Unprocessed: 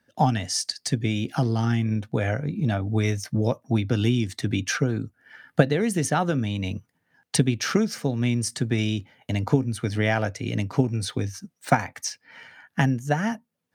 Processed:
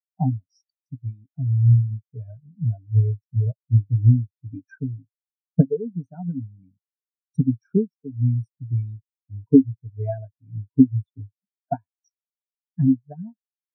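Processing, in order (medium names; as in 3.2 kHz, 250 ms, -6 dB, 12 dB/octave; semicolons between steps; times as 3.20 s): rippled EQ curve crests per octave 1.6, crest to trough 6 dB; 0.93–2.37 s: transient shaper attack -1 dB, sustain -7 dB; spectral contrast expander 4:1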